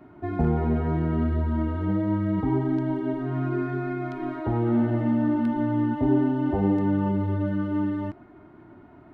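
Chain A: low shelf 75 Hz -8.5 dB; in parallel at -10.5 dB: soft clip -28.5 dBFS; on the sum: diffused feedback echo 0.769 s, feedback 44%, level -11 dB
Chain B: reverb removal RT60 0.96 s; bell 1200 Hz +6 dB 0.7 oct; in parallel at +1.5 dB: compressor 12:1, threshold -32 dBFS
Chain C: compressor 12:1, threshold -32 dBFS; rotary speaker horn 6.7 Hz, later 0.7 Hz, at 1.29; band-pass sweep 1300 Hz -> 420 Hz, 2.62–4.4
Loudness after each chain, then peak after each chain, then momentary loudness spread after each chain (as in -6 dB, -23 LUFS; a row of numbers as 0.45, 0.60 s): -25.0, -25.0, -47.5 LUFS; -11.0, -10.0, -32.0 dBFS; 9, 5, 13 LU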